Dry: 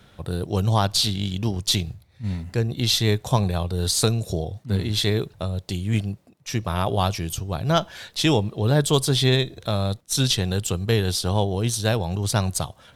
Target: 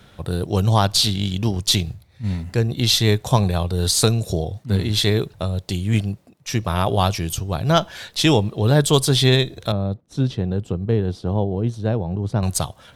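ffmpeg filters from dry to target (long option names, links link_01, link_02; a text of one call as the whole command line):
ffmpeg -i in.wav -filter_complex "[0:a]asettb=1/sr,asplit=3[link_01][link_02][link_03];[link_01]atrim=end=9.724[link_04];[link_02]atrim=start=9.72:end=12.43,asetpts=PTS-STARTPTS,afade=type=in:duration=0.004:curve=qsin,afade=type=out:start_time=2.706:duration=0.004:curve=qsin,bandpass=frequency=220:width_type=q:width=0.54:csg=0[link_05];[link_03]atrim=start=12.426[link_06];[link_04][link_05]acrossfade=duration=0.004:curve1=hsin:curve2=qsin[link_07];[link_07][link_06]acrossfade=duration=0.004:curve1=qsin:curve2=hsin,volume=3.5dB" out.wav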